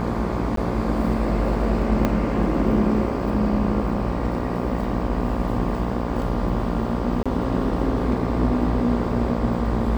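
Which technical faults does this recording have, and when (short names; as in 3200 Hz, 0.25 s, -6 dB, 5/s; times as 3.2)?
buzz 60 Hz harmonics 20 -27 dBFS
0.56–0.57 gap 13 ms
2.05 pop -8 dBFS
7.23–7.26 gap 26 ms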